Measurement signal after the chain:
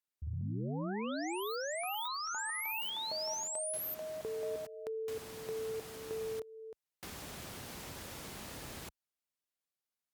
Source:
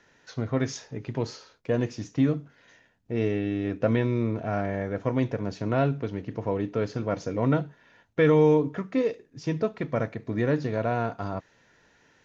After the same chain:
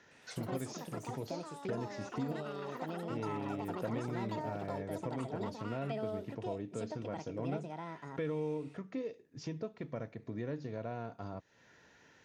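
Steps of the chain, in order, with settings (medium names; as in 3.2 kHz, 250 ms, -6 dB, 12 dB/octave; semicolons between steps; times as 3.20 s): high-pass 59 Hz 12 dB/octave; dynamic bell 1.5 kHz, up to -4 dB, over -44 dBFS, Q 0.85; compression 2:1, threshold -45 dBFS; ever faster or slower copies 111 ms, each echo +6 st, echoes 3; trim -1.5 dB; Opus 256 kbps 48 kHz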